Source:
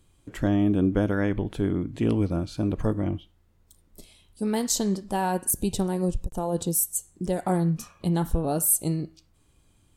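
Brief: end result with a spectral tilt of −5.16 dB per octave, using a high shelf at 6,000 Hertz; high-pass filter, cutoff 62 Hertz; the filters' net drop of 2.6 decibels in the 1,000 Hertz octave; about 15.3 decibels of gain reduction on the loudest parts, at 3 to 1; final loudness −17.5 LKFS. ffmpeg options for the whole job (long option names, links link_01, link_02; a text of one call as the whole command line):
ffmpeg -i in.wav -af "highpass=62,equalizer=frequency=1000:width_type=o:gain=-3.5,highshelf=frequency=6000:gain=-8.5,acompressor=threshold=-40dB:ratio=3,volume=23dB" out.wav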